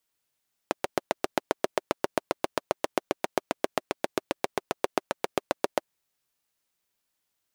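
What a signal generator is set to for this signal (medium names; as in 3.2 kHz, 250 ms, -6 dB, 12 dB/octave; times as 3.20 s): single-cylinder engine model, steady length 5.20 s, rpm 900, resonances 390/570 Hz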